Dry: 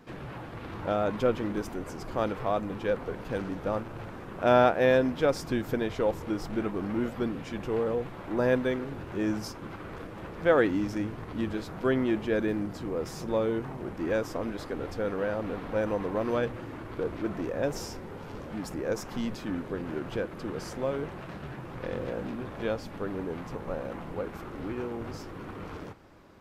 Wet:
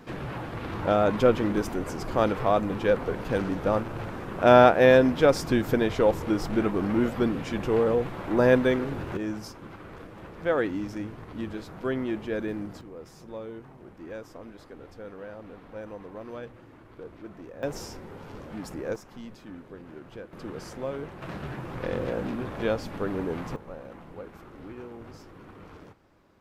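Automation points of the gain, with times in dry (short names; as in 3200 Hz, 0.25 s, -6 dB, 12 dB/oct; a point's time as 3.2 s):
+5.5 dB
from 9.17 s -3 dB
from 12.81 s -11 dB
from 17.63 s -1.5 dB
from 18.96 s -10 dB
from 20.33 s -2.5 dB
from 21.22 s +4 dB
from 23.56 s -7 dB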